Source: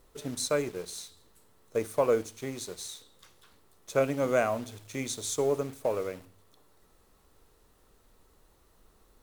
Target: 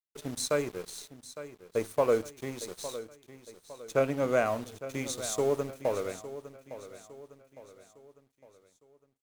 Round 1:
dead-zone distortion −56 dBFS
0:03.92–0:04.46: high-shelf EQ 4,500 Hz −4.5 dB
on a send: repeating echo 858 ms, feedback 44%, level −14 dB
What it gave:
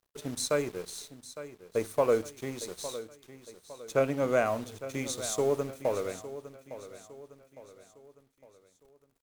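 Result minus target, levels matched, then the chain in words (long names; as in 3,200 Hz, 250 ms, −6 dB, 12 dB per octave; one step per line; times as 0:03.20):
dead-zone distortion: distortion −5 dB
dead-zone distortion −49.5 dBFS
0:03.92–0:04.46: high-shelf EQ 4,500 Hz −4.5 dB
on a send: repeating echo 858 ms, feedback 44%, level −14 dB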